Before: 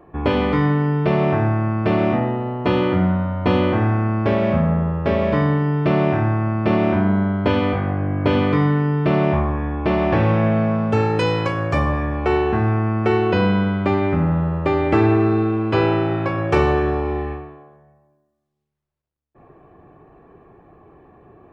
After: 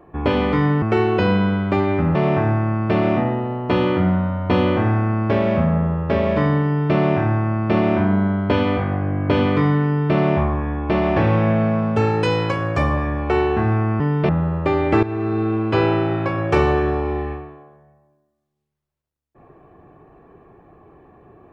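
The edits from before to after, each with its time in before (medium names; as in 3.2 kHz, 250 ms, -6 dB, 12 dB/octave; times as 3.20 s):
0.82–1.11 s: swap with 12.96–14.29 s
15.03–15.54 s: fade in, from -14.5 dB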